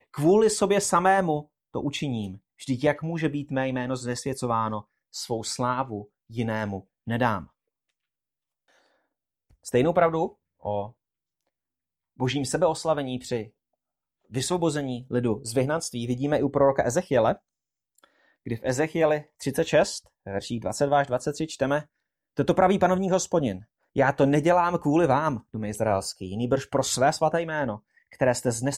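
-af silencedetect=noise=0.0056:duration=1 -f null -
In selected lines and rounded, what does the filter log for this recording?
silence_start: 7.46
silence_end: 9.65 | silence_duration: 2.19
silence_start: 10.91
silence_end: 12.19 | silence_duration: 1.28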